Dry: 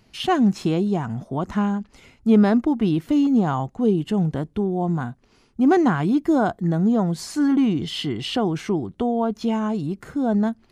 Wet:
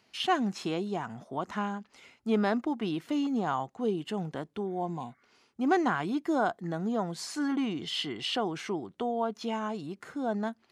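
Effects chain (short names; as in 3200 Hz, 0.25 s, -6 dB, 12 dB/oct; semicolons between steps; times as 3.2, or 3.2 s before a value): weighting filter A; spectral repair 4.7–5.31, 1100–2300 Hz after; low shelf 85 Hz +9.5 dB; gain -4.5 dB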